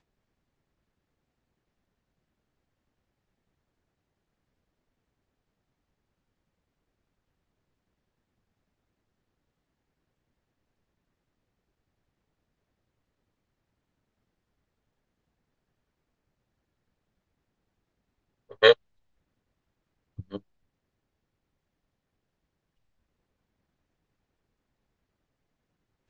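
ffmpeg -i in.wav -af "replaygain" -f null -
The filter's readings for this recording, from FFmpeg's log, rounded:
track_gain = +64.0 dB
track_peak = 0.455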